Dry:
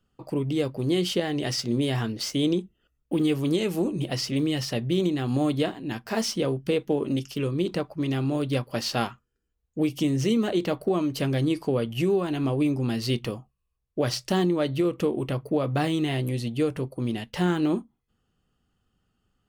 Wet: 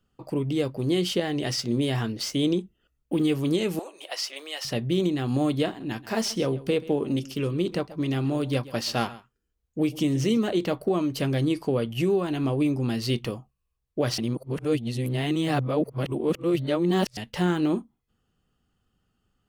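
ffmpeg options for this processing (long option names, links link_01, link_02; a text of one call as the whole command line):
ffmpeg -i in.wav -filter_complex "[0:a]asettb=1/sr,asplit=3[link_01][link_02][link_03];[link_01]atrim=end=3.794[link_04];[link_02]atrim=start=3.79:end=4.65,asetpts=PTS-STARTPTS,afade=type=in:duration=0.004:curve=qsin,afade=type=out:start_time=0.856:duration=0.004:curve=qsin,highpass=frequency=610:width=0.5412,highpass=frequency=610:width=1.3066[link_05];[link_03]atrim=start=4.646[link_06];[link_04][link_05]acrossfade=duration=0.004:curve1=hsin:curve2=qsin[link_07];[link_07][link_06]acrossfade=duration=0.004:curve1=qsin:curve2=hsin,asettb=1/sr,asplit=3[link_08][link_09][link_10];[link_08]atrim=end=5.674[link_11];[link_09]atrim=start=5.67:end=10.39,asetpts=PTS-STARTPTS,afade=type=in:duration=0.004:curve=qsin,afade=type=out:start_time=4.716:duration=0.004:curve=qsin,aecho=1:1:133:0.119,atrim=end_sample=208152[link_12];[link_10]atrim=start=10.386[link_13];[link_11][link_12]acrossfade=duration=0.004:curve1=hsin:curve2=qsin[link_14];[link_14][link_13]acrossfade=duration=0.004:curve1=qsin:curve2=hsin,asplit=3[link_15][link_16][link_17];[link_15]atrim=end=14.182[link_18];[link_16]atrim=start=14.178:end=17.172,asetpts=PTS-STARTPTS,areverse[link_19];[link_17]atrim=start=17.168[link_20];[link_18][link_19]acrossfade=duration=0.004:curve1=hsin:curve2=hsin[link_21];[link_21][link_20]acrossfade=duration=0.004:curve1=hsin:curve2=hsin" out.wav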